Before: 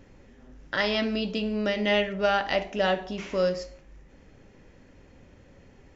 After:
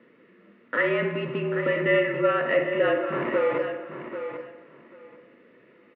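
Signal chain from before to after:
parametric band 910 Hz −11.5 dB 0.34 octaves
in parallel at −9 dB: log-companded quantiser 2 bits
0:03.12–0:03.58: on the sum: comparator with hysteresis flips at −29 dBFS
background noise violet −41 dBFS
notch comb filter 810 Hz
on a send: repeating echo 790 ms, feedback 18%, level −9.5 dB
on the sum: single-sideband voice off tune −50 Hz 290–2,400 Hz
spring reverb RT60 1.2 s, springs 42/50 ms, chirp 35 ms, DRR 8 dB
level +2.5 dB

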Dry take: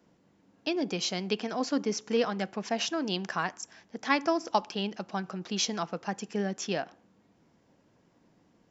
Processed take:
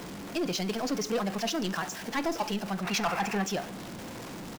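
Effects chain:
converter with a step at zero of −34.5 dBFS
gain on a spectral selection 0:05.38–0:06.53, 660–2,800 Hz +10 dB
tempo change 1.9×
soft clipping −22.5 dBFS, distortion −11 dB
on a send: convolution reverb RT60 0.95 s, pre-delay 6 ms, DRR 14.5 dB

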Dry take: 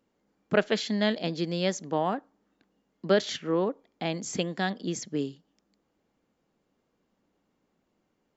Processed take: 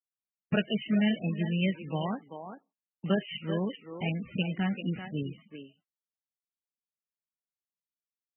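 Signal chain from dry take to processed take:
noise gate −47 dBFS, range −42 dB
flat-topped bell 720 Hz −12.5 dB 3 octaves
noise that follows the level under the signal 12 dB
far-end echo of a speakerphone 390 ms, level −7 dB
level +4.5 dB
MP3 8 kbit/s 22,050 Hz

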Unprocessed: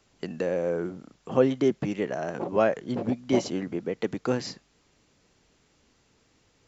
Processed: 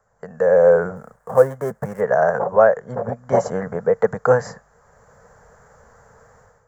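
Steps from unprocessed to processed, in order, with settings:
0:00.96–0:02.01: gap after every zero crossing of 0.11 ms
drawn EQ curve 130 Hz 0 dB, 220 Hz −6 dB, 320 Hz −25 dB, 460 Hz +6 dB, 1,700 Hz +5 dB, 2,600 Hz −24 dB, 3,900 Hz −23 dB, 8,100 Hz −1 dB
automatic gain control gain up to 16 dB
level −1 dB

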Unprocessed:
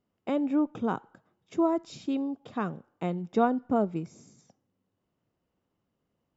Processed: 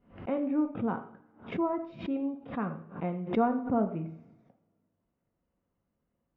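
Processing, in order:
low-pass filter 2,500 Hz 24 dB per octave
low-shelf EQ 100 Hz +7.5 dB
coupled-rooms reverb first 0.53 s, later 2 s, from −26 dB, DRR 4.5 dB
background raised ahead of every attack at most 140 dB per second
level −4.5 dB

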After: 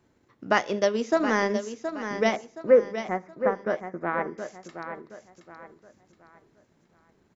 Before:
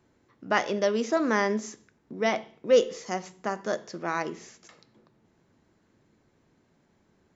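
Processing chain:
0:02.36–0:04.38: Butterworth low-pass 2,200 Hz 72 dB per octave
transient designer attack +4 dB, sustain −5 dB
repeating echo 721 ms, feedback 35%, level −9 dB

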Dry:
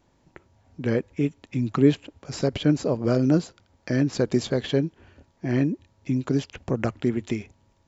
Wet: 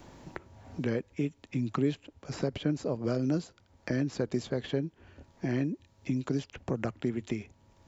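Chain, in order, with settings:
multiband upward and downward compressor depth 70%
level −8 dB

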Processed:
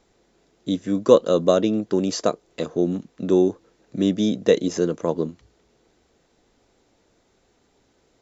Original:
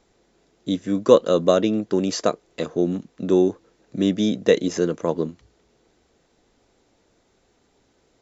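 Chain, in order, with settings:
dynamic equaliser 2,000 Hz, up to −4 dB, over −40 dBFS, Q 1.1

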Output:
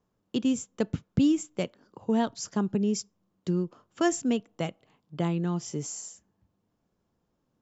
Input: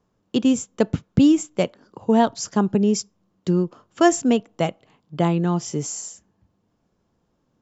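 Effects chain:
dynamic equaliser 750 Hz, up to −5 dB, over −30 dBFS, Q 1
level −7 dB

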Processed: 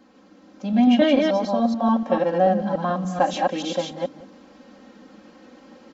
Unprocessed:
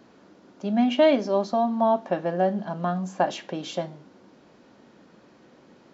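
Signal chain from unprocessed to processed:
delay that plays each chunk backwards 145 ms, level −2 dB
comb filter 3.8 ms, depth 86%
on a send: single-tap delay 182 ms −20 dB
on the sum: automatic gain control gain up to 5 dB
level −3.5 dB

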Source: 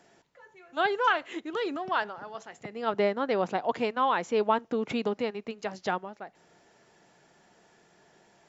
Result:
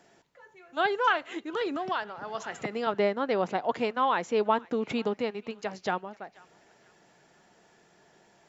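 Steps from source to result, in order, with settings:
on a send: feedback echo with a band-pass in the loop 483 ms, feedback 47%, band-pass 2,200 Hz, level −22 dB
0:01.61–0:02.87: on the sum: multiband upward and downward compressor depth 100%

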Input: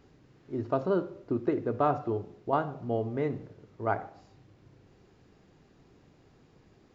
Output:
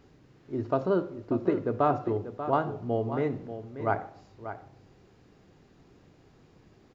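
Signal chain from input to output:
single-tap delay 588 ms −11 dB
level +1.5 dB

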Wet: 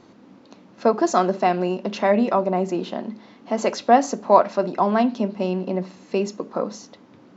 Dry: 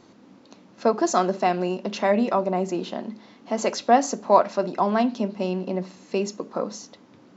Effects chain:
high-shelf EQ 5,600 Hz −8.5 dB
level +2.5 dB

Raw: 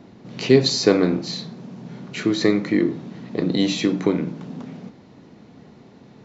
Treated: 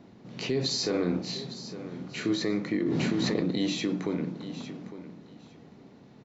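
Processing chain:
brickwall limiter −12.5 dBFS, peak gain reduction 10.5 dB
0:00.75–0:02.36: double-tracking delay 34 ms −7 dB
repeating echo 856 ms, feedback 18%, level −13.5 dB
0:02.86–0:03.50: envelope flattener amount 100%
level −6.5 dB

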